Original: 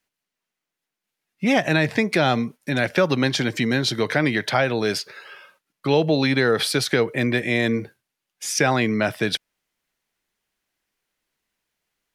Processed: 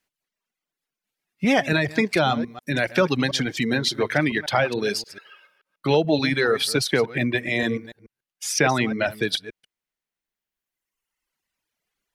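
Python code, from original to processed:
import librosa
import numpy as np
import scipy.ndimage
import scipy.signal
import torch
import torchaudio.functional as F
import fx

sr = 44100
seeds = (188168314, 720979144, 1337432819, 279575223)

y = fx.reverse_delay(x, sr, ms=144, wet_db=-8.5)
y = fx.dereverb_blind(y, sr, rt60_s=1.9)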